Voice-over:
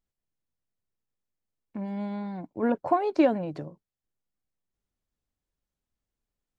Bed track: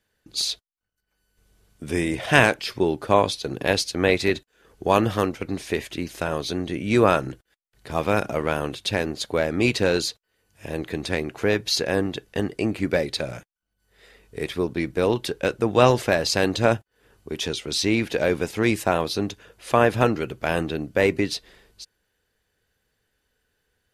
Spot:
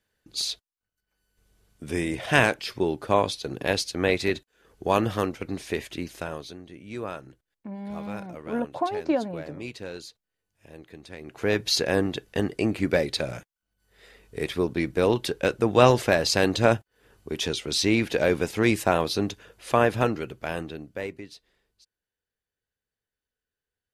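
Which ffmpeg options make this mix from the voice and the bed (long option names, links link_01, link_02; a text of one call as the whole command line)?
ffmpeg -i stem1.wav -i stem2.wav -filter_complex "[0:a]adelay=5900,volume=-3dB[link_01];[1:a]volume=12.5dB,afade=type=out:start_time=6.02:duration=0.56:silence=0.223872,afade=type=in:start_time=11.19:duration=0.42:silence=0.158489,afade=type=out:start_time=19.34:duration=1.88:silence=0.133352[link_02];[link_01][link_02]amix=inputs=2:normalize=0" out.wav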